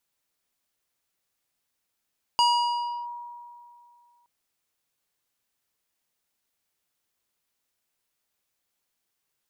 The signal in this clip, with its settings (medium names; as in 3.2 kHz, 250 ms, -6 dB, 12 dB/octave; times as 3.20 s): FM tone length 1.87 s, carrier 957 Hz, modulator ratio 4.02, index 0.82, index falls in 0.68 s linear, decay 2.42 s, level -16 dB